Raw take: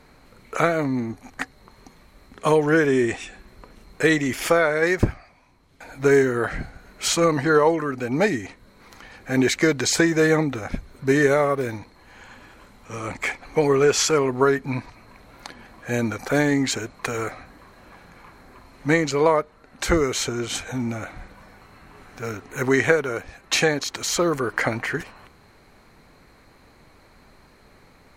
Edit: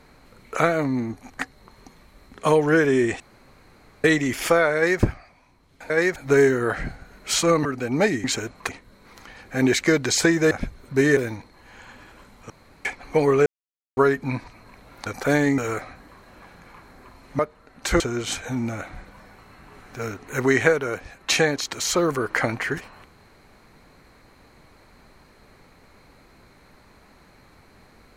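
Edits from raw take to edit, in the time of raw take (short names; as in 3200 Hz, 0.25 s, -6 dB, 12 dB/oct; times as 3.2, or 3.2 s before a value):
3.2–4.04 room tone
4.75–5.01 copy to 5.9
7.39–7.85 cut
10.26–10.62 cut
11.28–11.59 cut
12.92–13.27 room tone
13.88–14.39 mute
15.48–16.11 cut
16.63–17.08 move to 8.44
18.89–19.36 cut
19.97–20.23 cut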